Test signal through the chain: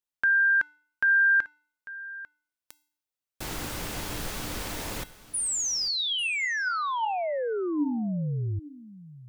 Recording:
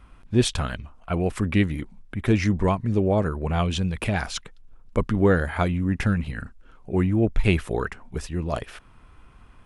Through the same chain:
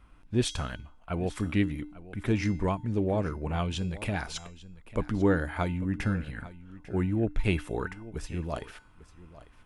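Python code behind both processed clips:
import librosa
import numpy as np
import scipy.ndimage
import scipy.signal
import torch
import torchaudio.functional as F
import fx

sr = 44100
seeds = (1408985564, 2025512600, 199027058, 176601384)

y = fx.comb_fb(x, sr, f0_hz=300.0, decay_s=0.52, harmonics='odd', damping=0.0, mix_pct=70)
y = y + 10.0 ** (-17.5 / 20.0) * np.pad(y, (int(846 * sr / 1000.0), 0))[:len(y)]
y = F.gain(torch.from_numpy(y), 3.5).numpy()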